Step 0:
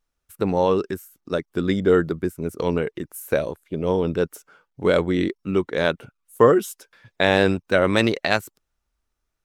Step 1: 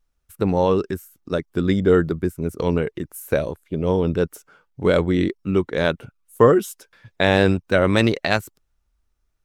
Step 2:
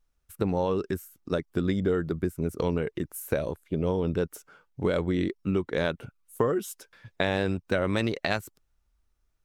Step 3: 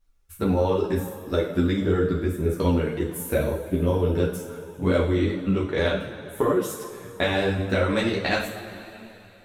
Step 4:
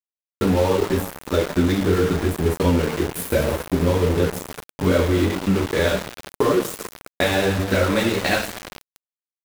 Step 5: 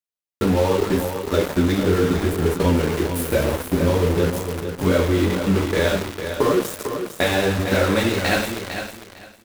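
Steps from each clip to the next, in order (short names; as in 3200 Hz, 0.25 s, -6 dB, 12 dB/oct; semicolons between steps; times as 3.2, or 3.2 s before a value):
low shelf 140 Hz +9 dB
compressor 5:1, threshold -21 dBFS, peak gain reduction 11.5 dB; gain -2 dB
two-slope reverb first 0.51 s, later 3.4 s, from -15 dB, DRR -0.5 dB; ensemble effect; gain +4.5 dB
in parallel at -1 dB: compressor 6:1, threshold -30 dBFS, peak gain reduction 12.5 dB; on the sum: sample gate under -25 dBFS; gain +1.5 dB
feedback echo 0.452 s, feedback 20%, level -8.5 dB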